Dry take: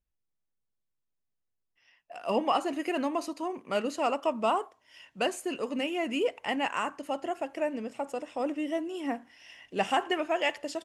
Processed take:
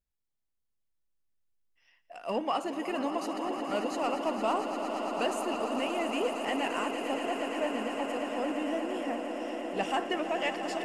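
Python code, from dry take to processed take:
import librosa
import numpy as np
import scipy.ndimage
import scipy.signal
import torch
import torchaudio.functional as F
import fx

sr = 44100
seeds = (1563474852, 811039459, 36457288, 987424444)

p1 = 10.0 ** (-25.5 / 20.0) * np.tanh(x / 10.0 ** (-25.5 / 20.0))
p2 = x + (p1 * librosa.db_to_amplitude(-6.5))
p3 = fx.echo_swell(p2, sr, ms=115, loudest=8, wet_db=-11.5)
y = p3 * librosa.db_to_amplitude(-6.0)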